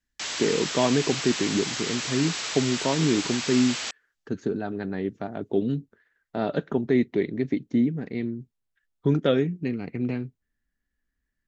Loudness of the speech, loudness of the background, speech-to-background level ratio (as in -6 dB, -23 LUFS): -26.5 LUFS, -29.5 LUFS, 3.0 dB